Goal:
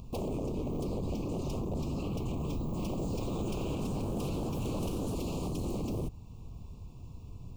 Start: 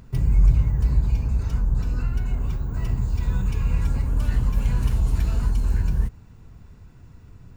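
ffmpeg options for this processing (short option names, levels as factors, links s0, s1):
-filter_complex "[0:a]alimiter=limit=0.211:level=0:latency=1:release=363,aeval=exprs='0.0355*(abs(mod(val(0)/0.0355+3,4)-2)-1)':c=same,asuperstop=centerf=1700:order=8:qfactor=1.3,asettb=1/sr,asplit=3[s0][s1][s2];[s0]atrim=end=2.944[s3];[s1]atrim=start=2.94:end=5.14,asetpts=PTS-STARTPTS,afade=t=in:d=0.004:c=qsin,afade=t=out:st=2.196:d=0.004:c=qsin,asplit=7[s4][s5][s6][s7][s8][s9][s10];[s5]adelay=90,afreqshift=140,volume=0.2[s11];[s6]adelay=180,afreqshift=280,volume=0.116[s12];[s7]adelay=270,afreqshift=420,volume=0.0668[s13];[s8]adelay=360,afreqshift=560,volume=0.0389[s14];[s9]adelay=450,afreqshift=700,volume=0.0226[s15];[s10]adelay=540,afreqshift=840,volume=0.013[s16];[s4][s11][s12][s13][s14][s15][s16]amix=inputs=7:normalize=0,atrim=end_sample=97020[s17];[s2]atrim=start=5.136[s18];[s3][s17]acrossfade=d=0.004:c1=hsin:c2=qsin[s19];[s19][s18]acrossfade=d=0.004:c1=qsin:c2=hsin"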